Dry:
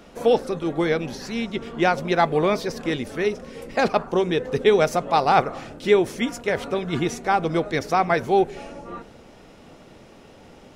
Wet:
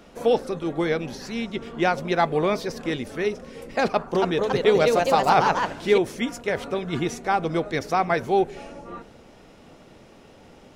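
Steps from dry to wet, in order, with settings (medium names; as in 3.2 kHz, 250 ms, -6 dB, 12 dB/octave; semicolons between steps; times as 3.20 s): 3.86–5.98 s: ever faster or slower copies 287 ms, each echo +2 st, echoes 2; trim -2 dB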